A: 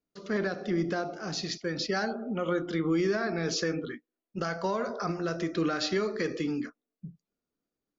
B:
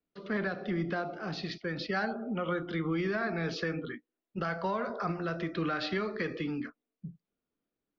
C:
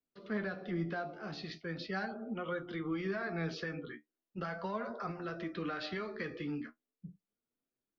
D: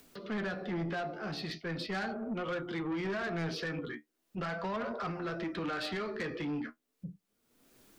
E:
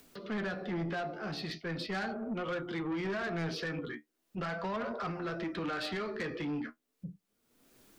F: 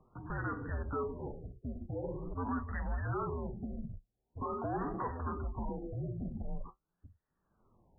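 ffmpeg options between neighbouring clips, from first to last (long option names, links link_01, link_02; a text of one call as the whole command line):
ffmpeg -i in.wav -filter_complex "[0:a]lowpass=frequency=3800:width=0.5412,lowpass=frequency=3800:width=1.3066,acrossover=split=270|550|2000[link_01][link_02][link_03][link_04];[link_02]acompressor=threshold=-44dB:ratio=6[link_05];[link_01][link_05][link_03][link_04]amix=inputs=4:normalize=0" out.wav
ffmpeg -i in.wav -af "flanger=delay=7.5:depth=6.8:regen=47:speed=0.39:shape=triangular,volume=-2dB" out.wav
ffmpeg -i in.wav -af "acompressor=mode=upward:threshold=-48dB:ratio=2.5,asoftclip=type=tanh:threshold=-37.5dB,volume=6.5dB" out.wav
ffmpeg -i in.wav -af anull out.wav
ffmpeg -i in.wav -af "highpass=frequency=270:width_type=q:width=0.5412,highpass=frequency=270:width_type=q:width=1.307,lowpass=frequency=3300:width_type=q:width=0.5176,lowpass=frequency=3300:width_type=q:width=0.7071,lowpass=frequency=3300:width_type=q:width=1.932,afreqshift=-270,afftfilt=real='re*lt(b*sr/1024,720*pow(2000/720,0.5+0.5*sin(2*PI*0.45*pts/sr)))':imag='im*lt(b*sr/1024,720*pow(2000/720,0.5+0.5*sin(2*PI*0.45*pts/sr)))':win_size=1024:overlap=0.75,volume=1dB" out.wav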